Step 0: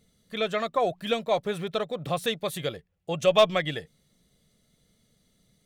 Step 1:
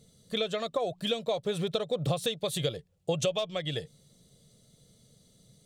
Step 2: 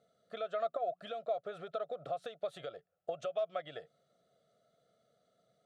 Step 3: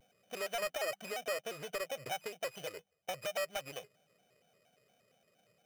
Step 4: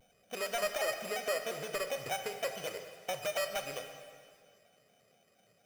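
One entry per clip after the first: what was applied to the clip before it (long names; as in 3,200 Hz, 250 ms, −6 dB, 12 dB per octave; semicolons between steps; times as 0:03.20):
dynamic equaliser 3,000 Hz, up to +5 dB, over −43 dBFS, Q 0.95; downward compressor 20 to 1, threshold −31 dBFS, peak gain reduction 19.5 dB; octave-band graphic EQ 125/500/2,000/4,000/8,000 Hz +10/+7/−5/+5/+8 dB
downward compressor, threshold −30 dBFS, peak gain reduction 6.5 dB; pair of resonant band-passes 950 Hz, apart 0.92 octaves; level +6 dB
samples sorted by size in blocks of 16 samples; soft clipping −33 dBFS, distortion −13 dB; pitch modulation by a square or saw wave square 4.3 Hz, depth 160 cents; level +2 dB
dense smooth reverb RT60 2 s, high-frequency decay 0.95×, DRR 5.5 dB; level +2.5 dB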